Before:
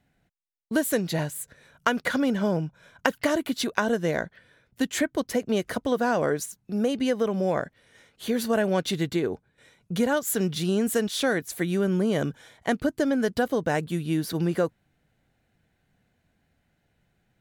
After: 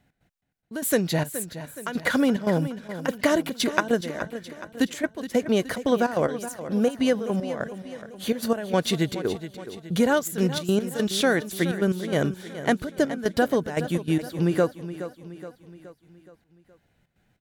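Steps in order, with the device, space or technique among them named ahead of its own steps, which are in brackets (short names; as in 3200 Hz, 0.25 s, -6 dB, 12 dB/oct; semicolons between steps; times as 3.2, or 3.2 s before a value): trance gate with a delay (step gate "x.xx.x..xxx" 146 bpm -12 dB; feedback echo 0.421 s, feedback 51%, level -12.5 dB); gain +3 dB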